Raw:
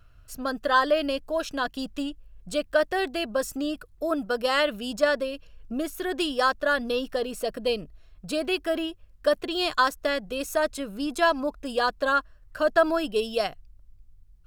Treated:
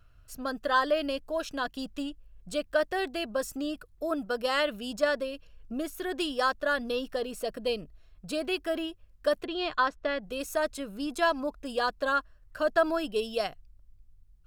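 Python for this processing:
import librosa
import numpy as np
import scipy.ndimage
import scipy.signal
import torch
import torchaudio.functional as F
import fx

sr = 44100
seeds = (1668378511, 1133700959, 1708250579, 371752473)

y = fx.lowpass(x, sr, hz=3300.0, slope=12, at=(9.44, 10.23))
y = F.gain(torch.from_numpy(y), -4.0).numpy()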